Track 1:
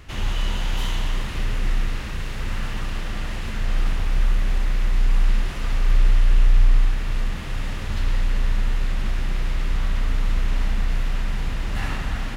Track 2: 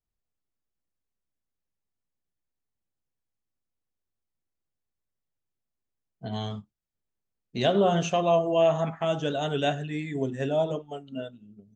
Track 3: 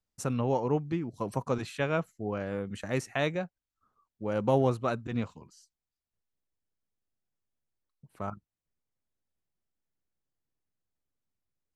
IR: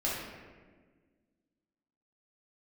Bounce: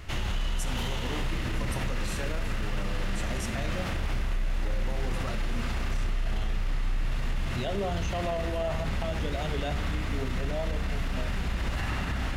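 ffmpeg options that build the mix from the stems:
-filter_complex "[0:a]volume=-2.5dB,asplit=2[a][b];[b]volume=-6.5dB[c];[1:a]volume=-2.5dB[d];[2:a]acompressor=threshold=-31dB:ratio=6,aexciter=amount=3.5:drive=6.2:freq=4.4k,adelay=400,volume=-2dB,asplit=2[e][f];[f]volume=-10dB[g];[3:a]atrim=start_sample=2205[h];[c][g]amix=inputs=2:normalize=0[i];[i][h]afir=irnorm=-1:irlink=0[j];[a][d][e][j]amix=inputs=4:normalize=0,alimiter=limit=-21.5dB:level=0:latency=1:release=65"

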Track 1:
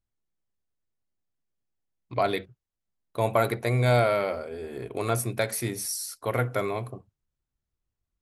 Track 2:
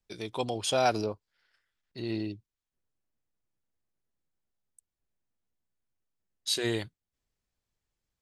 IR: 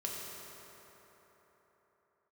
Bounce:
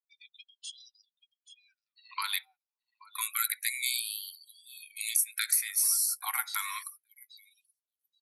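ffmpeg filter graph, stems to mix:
-filter_complex "[0:a]aemphasis=mode=production:type=75fm,acrossover=split=1000|2900[a][b][c];[a]acompressor=threshold=-31dB:ratio=4[d];[b]acompressor=threshold=-37dB:ratio=4[e];[c]acompressor=threshold=-27dB:ratio=4[f];[d][e][f]amix=inputs=3:normalize=0,volume=1.5dB,asplit=2[g][h];[h]volume=-18.5dB[i];[1:a]highpass=f=750:w=0.5412,highpass=f=750:w=1.3066,alimiter=limit=-23.5dB:level=0:latency=1:release=391,volume=-6.5dB,asplit=2[j][k];[k]volume=-9dB[l];[i][l]amix=inputs=2:normalize=0,aecho=0:1:829|1658|2487|3316:1|0.31|0.0961|0.0298[m];[g][j][m]amix=inputs=3:normalize=0,afftdn=nr=30:nf=-46,afftfilt=real='re*gte(b*sr/1024,730*pow(2800/730,0.5+0.5*sin(2*PI*0.28*pts/sr)))':imag='im*gte(b*sr/1024,730*pow(2800/730,0.5+0.5*sin(2*PI*0.28*pts/sr)))':win_size=1024:overlap=0.75"

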